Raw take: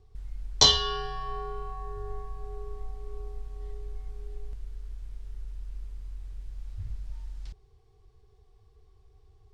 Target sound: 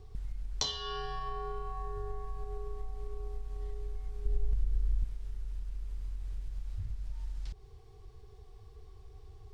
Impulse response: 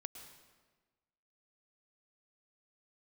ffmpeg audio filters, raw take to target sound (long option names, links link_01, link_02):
-filter_complex "[0:a]acompressor=threshold=-41dB:ratio=6,asettb=1/sr,asplit=3[link_01][link_02][link_03];[link_01]atrim=end=4.254[link_04];[link_02]atrim=start=4.25:end=5.04,asetpts=PTS-STARTPTS,afade=type=in:duration=0.004:curve=qsin,afade=type=out:start_time=0.786:duration=0.004:curve=qsin,lowshelf=frequency=300:gain=9.5[link_05];[link_03]atrim=start=5.036[link_06];[link_04][link_05]acrossfade=duration=0.004:curve1=hsin:curve2=qsin[link_07];[link_07][link_06]acrossfade=duration=0.004:curve1=qsin:curve2=hsin,volume=7dB"